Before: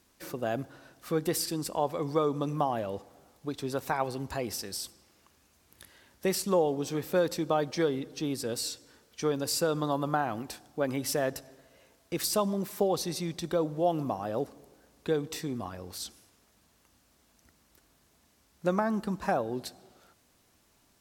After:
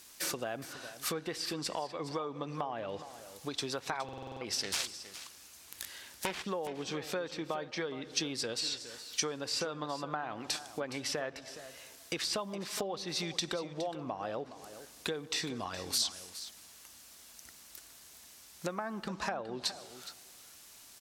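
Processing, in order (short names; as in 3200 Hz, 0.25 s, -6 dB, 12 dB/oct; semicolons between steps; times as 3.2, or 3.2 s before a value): 4.61–6.45 self-modulated delay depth 0.71 ms; low shelf 430 Hz -8 dB; treble ducked by the level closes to 2600 Hz, closed at -31 dBFS; compressor 5:1, threshold -41 dBFS, peak gain reduction 15.5 dB; high shelf 2200 Hz +11 dB; echo 0.416 s -13.5 dB; stuck buffer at 4.04, samples 2048, times 7; gain +5 dB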